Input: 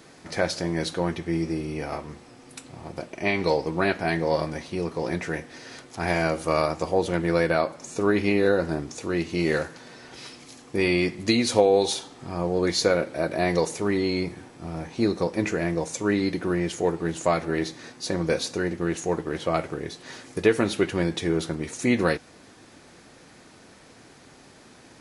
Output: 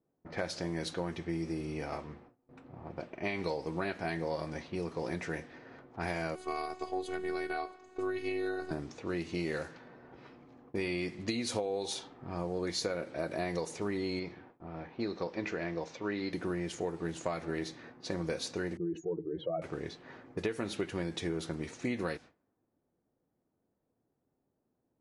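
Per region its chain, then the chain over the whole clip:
6.35–8.71 low shelf 87 Hz -10 dB + notch 5600 Hz, Q 7.7 + robotiser 371 Hz
14.19–16.33 LPF 5200 Hz 24 dB/oct + low shelf 260 Hz -7.5 dB
18.77–19.62 spectral contrast raised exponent 2.6 + LPF 3400 Hz + dynamic EQ 1300 Hz, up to -5 dB, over -47 dBFS, Q 3.3
whole clip: compressor, threshold -24 dBFS; gate with hold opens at -37 dBFS; low-pass opened by the level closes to 670 Hz, open at -25.5 dBFS; gain -6.5 dB

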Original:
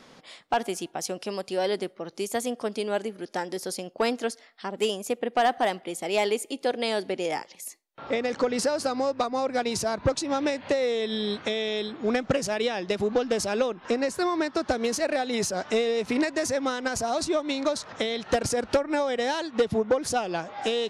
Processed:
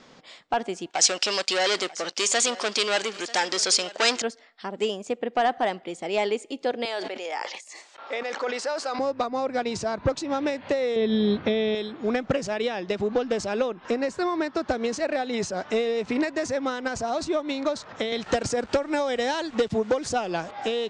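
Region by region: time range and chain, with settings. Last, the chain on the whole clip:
0.9–4.22 sample leveller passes 3 + weighting filter ITU-R 468 + echo 0.941 s -18.5 dB
6.85–8.99 HPF 630 Hz + sustainer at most 34 dB/s
10.96–11.75 polynomial smoothing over 15 samples + low shelf 400 Hz +11.5 dB
18.12–20.51 high shelf 5600 Hz +9.5 dB + sample gate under -44.5 dBFS + three-band squash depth 40%
whole clip: steep low-pass 8100 Hz 48 dB/oct; dynamic EQ 6200 Hz, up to -5 dB, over -47 dBFS, Q 0.87

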